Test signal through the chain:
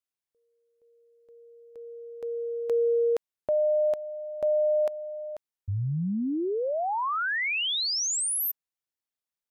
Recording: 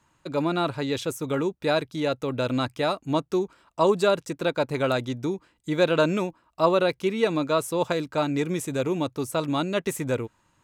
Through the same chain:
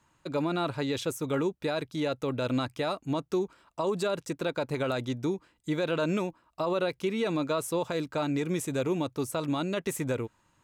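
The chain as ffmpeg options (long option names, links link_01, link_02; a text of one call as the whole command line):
ffmpeg -i in.wav -af "alimiter=limit=-18.5dB:level=0:latency=1:release=57,volume=-2dB" out.wav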